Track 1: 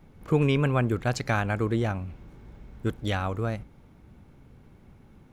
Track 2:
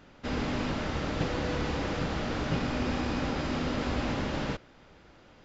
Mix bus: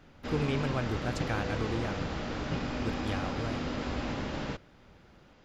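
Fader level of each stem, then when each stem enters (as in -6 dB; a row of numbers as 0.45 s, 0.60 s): -8.5 dB, -3.5 dB; 0.00 s, 0.00 s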